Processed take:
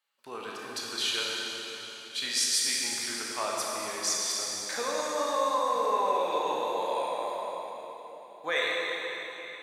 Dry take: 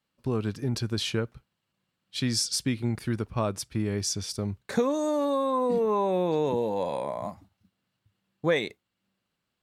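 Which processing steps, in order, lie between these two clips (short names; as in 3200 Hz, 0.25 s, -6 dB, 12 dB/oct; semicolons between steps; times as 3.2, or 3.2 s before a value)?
HPF 880 Hz 12 dB/oct; notch 5300 Hz, Q 15; reverb RT60 4.0 s, pre-delay 19 ms, DRR -4 dB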